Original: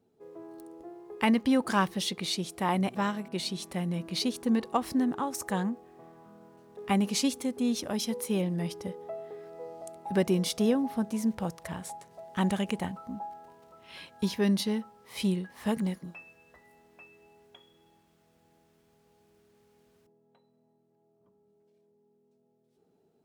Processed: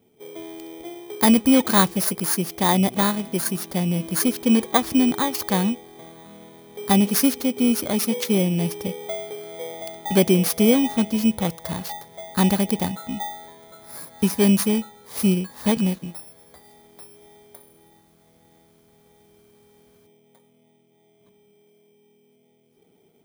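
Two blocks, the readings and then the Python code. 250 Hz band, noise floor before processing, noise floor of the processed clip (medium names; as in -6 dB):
+9.0 dB, -70 dBFS, -61 dBFS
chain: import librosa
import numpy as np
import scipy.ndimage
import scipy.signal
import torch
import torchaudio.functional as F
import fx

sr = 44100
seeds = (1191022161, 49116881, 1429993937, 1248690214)

y = fx.bit_reversed(x, sr, seeds[0], block=16)
y = F.gain(torch.from_numpy(y), 9.0).numpy()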